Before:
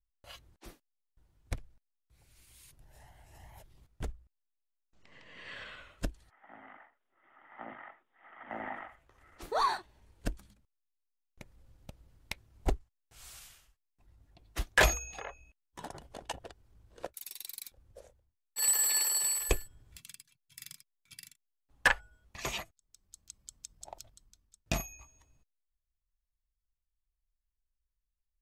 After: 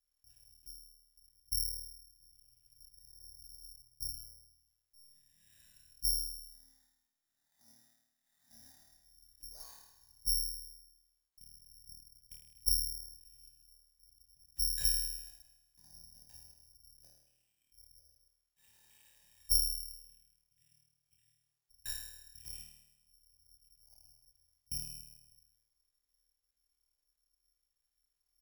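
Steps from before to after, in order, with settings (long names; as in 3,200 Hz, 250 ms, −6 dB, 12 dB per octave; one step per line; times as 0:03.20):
guitar amp tone stack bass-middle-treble 10-0-1
comb filter 1.2 ms, depth 60%
surface crackle 260 per second −74 dBFS
flutter between parallel walls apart 4.5 metres, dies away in 1 s
bad sample-rate conversion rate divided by 8×, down filtered, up zero stuff
level −9 dB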